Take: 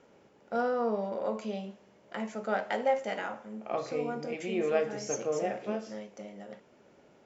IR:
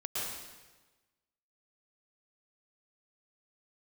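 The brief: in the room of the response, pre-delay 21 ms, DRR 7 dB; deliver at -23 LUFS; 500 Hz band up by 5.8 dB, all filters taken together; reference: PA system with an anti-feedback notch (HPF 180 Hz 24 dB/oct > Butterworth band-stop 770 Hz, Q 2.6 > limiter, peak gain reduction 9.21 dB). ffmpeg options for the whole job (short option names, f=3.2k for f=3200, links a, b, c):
-filter_complex "[0:a]equalizer=f=500:t=o:g=7,asplit=2[a][b];[1:a]atrim=start_sample=2205,adelay=21[c];[b][c]afir=irnorm=-1:irlink=0,volume=-11.5dB[d];[a][d]amix=inputs=2:normalize=0,highpass=f=180:w=0.5412,highpass=f=180:w=1.3066,asuperstop=centerf=770:order=8:qfactor=2.6,volume=9dB,alimiter=limit=-13.5dB:level=0:latency=1"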